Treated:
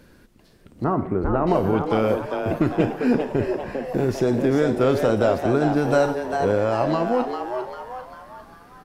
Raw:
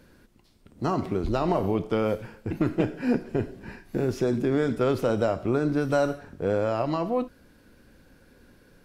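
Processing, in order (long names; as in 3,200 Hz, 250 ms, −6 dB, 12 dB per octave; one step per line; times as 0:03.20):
0:00.84–0:01.47: low-pass filter 1,800 Hz 24 dB per octave
echo with shifted repeats 398 ms, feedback 45%, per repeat +130 Hz, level −6.5 dB
level +4 dB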